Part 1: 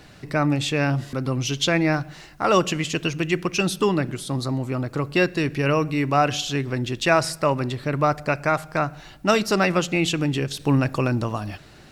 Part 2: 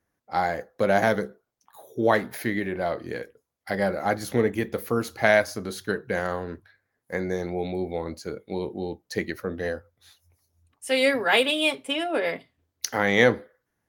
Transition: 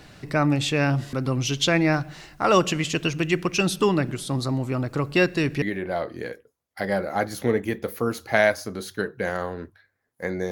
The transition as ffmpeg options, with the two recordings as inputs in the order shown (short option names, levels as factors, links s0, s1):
-filter_complex "[0:a]apad=whole_dur=10.51,atrim=end=10.51,atrim=end=5.622[s0];[1:a]atrim=start=2.518:end=7.41[s1];[s0][s1]acrossfade=d=0.004:c1=hsin:c2=hsin"